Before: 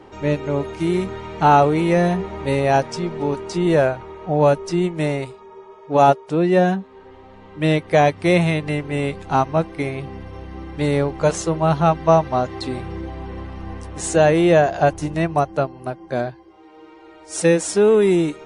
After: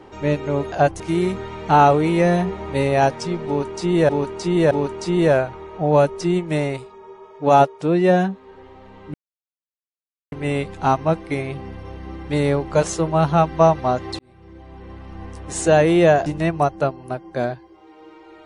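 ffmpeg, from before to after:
ffmpeg -i in.wav -filter_complex "[0:a]asplit=9[link_01][link_02][link_03][link_04][link_05][link_06][link_07][link_08][link_09];[link_01]atrim=end=0.722[link_10];[link_02]atrim=start=14.738:end=15.022[link_11];[link_03]atrim=start=0.718:end=3.812[link_12];[link_04]atrim=start=3.188:end=3.812[link_13];[link_05]atrim=start=3.188:end=7.62,asetpts=PTS-STARTPTS,afade=type=out:start_time=4.428:duration=0.004:curve=hsin[link_14];[link_06]atrim=start=7.62:end=8.8,asetpts=PTS-STARTPTS,volume=0[link_15];[link_07]atrim=start=8.8:end=12.67,asetpts=PTS-STARTPTS,afade=type=in:duration=0.004:curve=hsin,afade=type=out:start_time=3.866:duration=0.004:curve=hsin[link_16];[link_08]atrim=start=12.67:end=14.742,asetpts=PTS-STARTPTS,afade=type=in:duration=1.49[link_17];[link_09]atrim=start=15.018[link_18];[link_10][link_11]acrossfade=duration=0.004:curve1=hsin:curve2=hsin[link_19];[link_19][link_12]acrossfade=duration=0.004:curve1=hsin:curve2=hsin[link_20];[link_20][link_13]acrossfade=duration=0.004:curve1=hsin:curve2=hsin[link_21];[link_14][link_15][link_16][link_17]concat=n=4:v=0:a=1[link_22];[link_21][link_22]acrossfade=duration=0.004:curve1=hsin:curve2=hsin[link_23];[link_23][link_18]acrossfade=duration=0.004:curve1=hsin:curve2=hsin" out.wav

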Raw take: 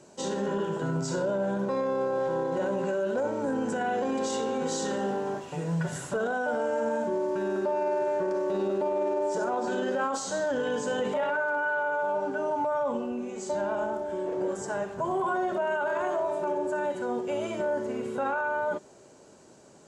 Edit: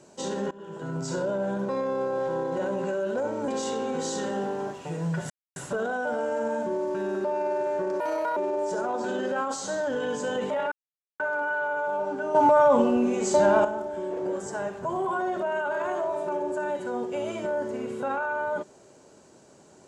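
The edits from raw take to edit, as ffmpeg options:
ffmpeg -i in.wav -filter_complex "[0:a]asplit=9[link_01][link_02][link_03][link_04][link_05][link_06][link_07][link_08][link_09];[link_01]atrim=end=0.51,asetpts=PTS-STARTPTS,afade=type=out:start_time=0.506:duration=0.004:curve=hsin:silence=0.0630957[link_10];[link_02]atrim=start=0.51:end=3.482,asetpts=PTS-STARTPTS,afade=type=in:duration=0.62:silence=0.0630957[link_11];[link_03]atrim=start=4.148:end=5.97,asetpts=PTS-STARTPTS,afade=type=out:start_time=1.818:duration=0.004:curve=hsin,apad=pad_dur=0.26[link_12];[link_04]atrim=start=5.97:end=8.414,asetpts=PTS-STARTPTS,afade=type=in:duration=0.004:curve=hsin[link_13];[link_05]atrim=start=8.41:end=9,asetpts=PTS-STARTPTS,asetrate=71001,aresample=44100[link_14];[link_06]atrim=start=8.996:end=11.35,asetpts=PTS-STARTPTS,afade=type=out:start_time=2.35:duration=0.004:curve=hsin,apad=pad_dur=0.48[link_15];[link_07]atrim=start=11.35:end=12.502,asetpts=PTS-STARTPTS,afade=type=in:duration=0.004:curve=hsin[link_16];[link_08]atrim=start=12.498:end=13.802,asetpts=PTS-STARTPTS,volume=10dB[link_17];[link_09]atrim=start=13.798[link_18];[link_10][link_11]concat=n=2:v=0:a=1[link_19];[link_12][link_13]concat=n=2:v=0:a=1[link_20];[link_19][link_20]acrossfade=duration=0.004:curve1=hsin:curve2=hsin[link_21];[link_21][link_14]acrossfade=duration=0.004:curve1=hsin:curve2=hsin[link_22];[link_15][link_16]concat=n=2:v=0:a=1[link_23];[link_22][link_23]acrossfade=duration=0.004:curve1=hsin:curve2=hsin[link_24];[link_24][link_17]acrossfade=duration=0.004:curve1=hsin:curve2=hsin[link_25];[link_25][link_18]acrossfade=duration=0.004:curve1=hsin:curve2=hsin" out.wav

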